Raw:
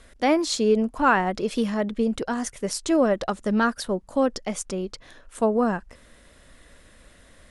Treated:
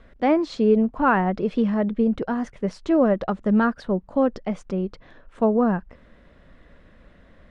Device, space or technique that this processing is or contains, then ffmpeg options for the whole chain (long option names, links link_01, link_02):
phone in a pocket: -af "lowpass=3600,equalizer=frequency=180:width_type=o:width=0.57:gain=5,highshelf=frequency=2400:gain=-10.5,volume=1.5dB"